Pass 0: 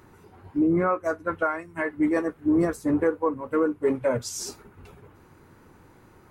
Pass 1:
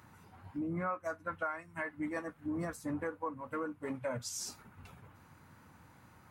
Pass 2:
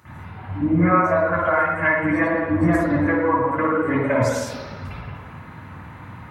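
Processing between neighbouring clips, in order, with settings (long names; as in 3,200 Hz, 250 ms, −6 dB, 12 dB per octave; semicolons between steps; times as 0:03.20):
high-pass filter 75 Hz; parametric band 390 Hz −14.5 dB 0.66 octaves; downward compressor 1.5 to 1, threshold −41 dBFS, peak gain reduction 7 dB; level −3 dB
convolution reverb RT60 1.3 s, pre-delay 51 ms, DRR −15.5 dB; level +4.5 dB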